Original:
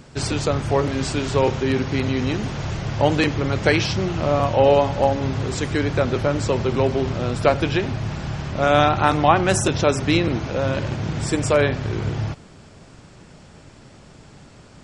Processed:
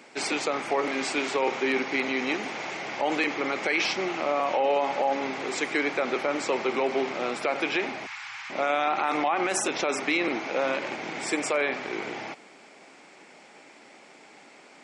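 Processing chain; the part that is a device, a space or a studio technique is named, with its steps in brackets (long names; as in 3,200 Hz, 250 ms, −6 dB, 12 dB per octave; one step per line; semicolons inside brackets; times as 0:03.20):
0:08.06–0:08.50: inverse Chebyshev band-stop filter 190–540 Hz, stop band 50 dB
dynamic equaliser 1,200 Hz, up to +5 dB, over −42 dBFS, Q 5.5
laptop speaker (high-pass filter 270 Hz 24 dB per octave; parametric band 800 Hz +6 dB 0.38 octaves; parametric band 2,200 Hz +11.5 dB 0.47 octaves; brickwall limiter −11.5 dBFS, peak gain reduction 13.5 dB)
level −4 dB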